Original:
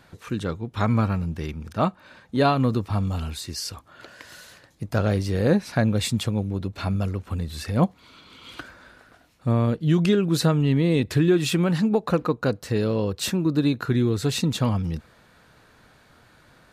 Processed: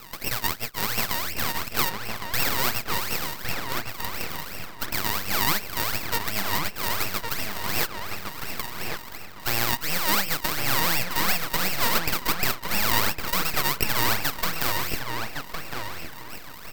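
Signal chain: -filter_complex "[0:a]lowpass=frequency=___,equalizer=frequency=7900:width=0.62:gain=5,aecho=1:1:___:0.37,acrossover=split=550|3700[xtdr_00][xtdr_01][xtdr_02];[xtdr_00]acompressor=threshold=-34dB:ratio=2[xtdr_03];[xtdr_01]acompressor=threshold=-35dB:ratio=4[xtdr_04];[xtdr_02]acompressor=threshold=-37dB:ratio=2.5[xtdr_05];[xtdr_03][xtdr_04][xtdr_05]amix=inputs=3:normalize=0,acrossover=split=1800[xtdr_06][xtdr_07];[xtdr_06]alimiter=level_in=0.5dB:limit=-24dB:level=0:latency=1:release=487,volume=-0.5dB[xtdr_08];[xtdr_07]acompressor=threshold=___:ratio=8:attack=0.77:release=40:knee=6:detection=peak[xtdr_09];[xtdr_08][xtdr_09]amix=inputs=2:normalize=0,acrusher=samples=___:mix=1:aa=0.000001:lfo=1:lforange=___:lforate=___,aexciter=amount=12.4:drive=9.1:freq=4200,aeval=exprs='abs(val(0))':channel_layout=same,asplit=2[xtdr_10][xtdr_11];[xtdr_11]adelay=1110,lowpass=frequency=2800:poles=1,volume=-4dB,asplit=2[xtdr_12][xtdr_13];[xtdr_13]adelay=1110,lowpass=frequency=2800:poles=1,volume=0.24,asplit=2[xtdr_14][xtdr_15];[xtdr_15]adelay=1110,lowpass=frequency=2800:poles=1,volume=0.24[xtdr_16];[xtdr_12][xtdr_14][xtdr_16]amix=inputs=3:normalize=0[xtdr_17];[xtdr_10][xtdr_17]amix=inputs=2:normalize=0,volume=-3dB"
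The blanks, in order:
10000, 4.8, -48dB, 32, 32, 2.8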